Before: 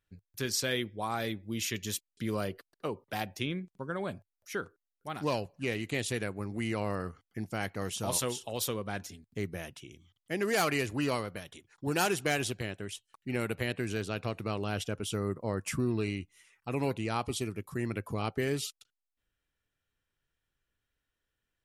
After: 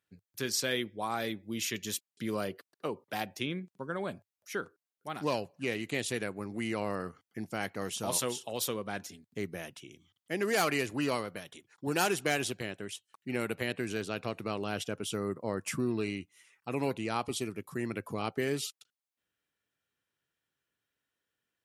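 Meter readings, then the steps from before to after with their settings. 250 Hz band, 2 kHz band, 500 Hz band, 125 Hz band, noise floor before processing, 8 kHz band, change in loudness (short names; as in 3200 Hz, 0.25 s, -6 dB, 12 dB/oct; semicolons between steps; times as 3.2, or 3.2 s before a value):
-0.5 dB, 0.0 dB, 0.0 dB, -5.0 dB, under -85 dBFS, 0.0 dB, -0.5 dB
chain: HPF 150 Hz 12 dB/oct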